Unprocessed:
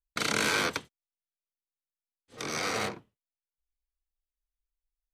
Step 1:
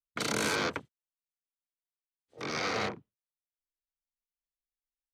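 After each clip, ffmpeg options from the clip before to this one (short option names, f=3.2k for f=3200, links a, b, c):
-filter_complex "[0:a]afwtdn=0.00891,acrossover=split=210|1100|5200[a][b][c][d];[c]alimiter=level_in=1.5dB:limit=-24dB:level=0:latency=1,volume=-1.5dB[e];[a][b][e][d]amix=inputs=4:normalize=0"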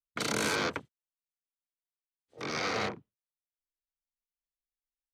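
-af anull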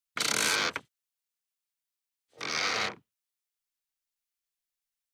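-af "tiltshelf=f=970:g=-7"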